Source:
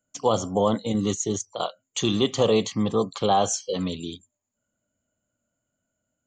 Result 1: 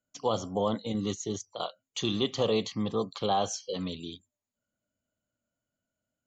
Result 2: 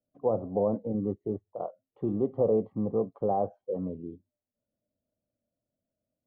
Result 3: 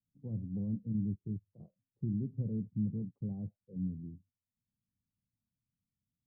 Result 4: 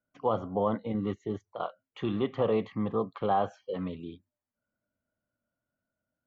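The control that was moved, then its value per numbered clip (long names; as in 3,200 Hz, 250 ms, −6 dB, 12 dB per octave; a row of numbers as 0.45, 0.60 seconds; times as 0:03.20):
transistor ladder low-pass, frequency: 6,300, 780, 210, 2,300 Hertz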